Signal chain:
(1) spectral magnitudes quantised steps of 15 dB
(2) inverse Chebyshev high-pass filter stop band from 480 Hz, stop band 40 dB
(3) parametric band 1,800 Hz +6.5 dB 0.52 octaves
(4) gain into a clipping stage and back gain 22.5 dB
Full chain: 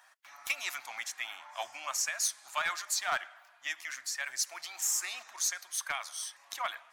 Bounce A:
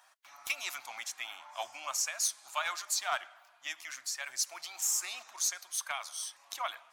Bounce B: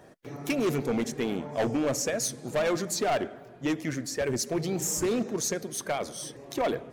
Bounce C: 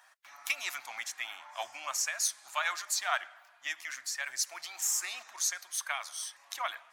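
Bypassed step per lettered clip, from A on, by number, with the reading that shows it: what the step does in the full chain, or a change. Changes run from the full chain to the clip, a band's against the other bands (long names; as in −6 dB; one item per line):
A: 3, 2 kHz band −3.0 dB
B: 2, 500 Hz band +21.0 dB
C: 4, distortion level −20 dB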